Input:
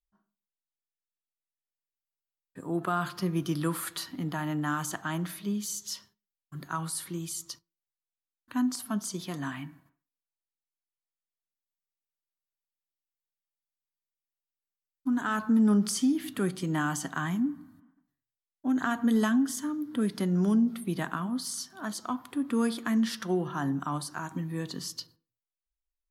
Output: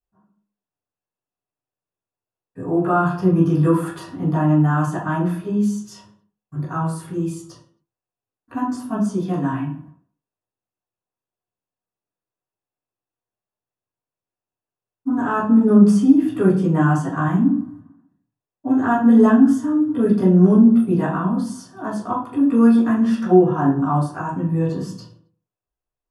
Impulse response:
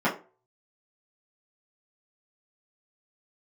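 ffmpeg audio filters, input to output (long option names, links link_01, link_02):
-filter_complex "[1:a]atrim=start_sample=2205,atrim=end_sample=6174,asetrate=22491,aresample=44100[link_01];[0:a][link_01]afir=irnorm=-1:irlink=0,volume=-8dB"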